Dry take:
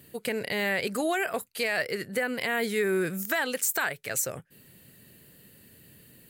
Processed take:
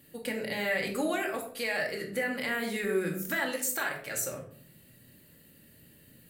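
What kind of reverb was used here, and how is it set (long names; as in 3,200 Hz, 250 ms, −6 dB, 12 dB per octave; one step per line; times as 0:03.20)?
rectangular room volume 670 cubic metres, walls furnished, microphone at 2.3 metres
level −6 dB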